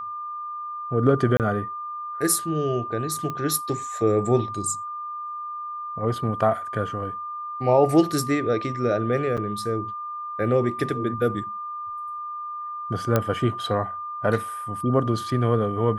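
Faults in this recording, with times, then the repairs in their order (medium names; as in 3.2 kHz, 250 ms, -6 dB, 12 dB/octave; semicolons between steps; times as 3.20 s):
whine 1.2 kHz -30 dBFS
1.37–1.40 s: dropout 28 ms
3.30 s: pop -17 dBFS
9.37–9.38 s: dropout 6.6 ms
13.16 s: pop -7 dBFS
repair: de-click; band-stop 1.2 kHz, Q 30; interpolate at 1.37 s, 28 ms; interpolate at 9.37 s, 6.6 ms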